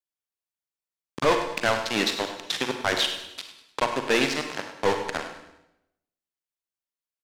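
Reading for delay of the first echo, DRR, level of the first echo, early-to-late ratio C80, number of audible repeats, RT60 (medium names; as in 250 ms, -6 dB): 101 ms, 5.0 dB, -12.5 dB, 7.5 dB, 4, 0.85 s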